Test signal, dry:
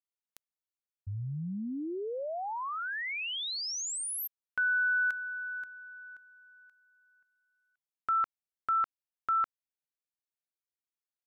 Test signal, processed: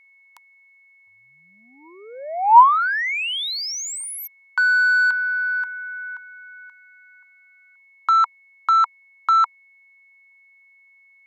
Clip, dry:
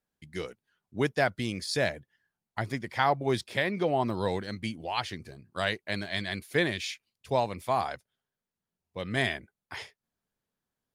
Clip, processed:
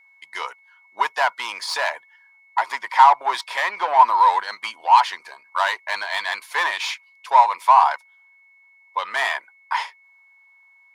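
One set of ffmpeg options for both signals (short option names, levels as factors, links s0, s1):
-filter_complex "[0:a]asplit=2[s0][s1];[s1]highpass=f=720:p=1,volume=12.6,asoftclip=type=tanh:threshold=0.316[s2];[s0][s2]amix=inputs=2:normalize=0,lowpass=f=4600:p=1,volume=0.501,highpass=f=960:t=q:w=11,aeval=exprs='val(0)+0.00398*sin(2*PI*2200*n/s)':c=same,volume=0.631"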